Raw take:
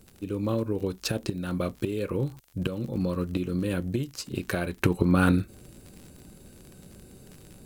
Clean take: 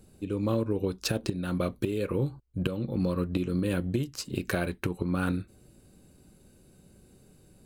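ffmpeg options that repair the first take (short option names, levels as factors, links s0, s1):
-af "adeclick=t=4,agate=range=0.0891:threshold=0.00708,asetnsamples=n=441:p=0,asendcmd='4.77 volume volume -7.5dB',volume=1"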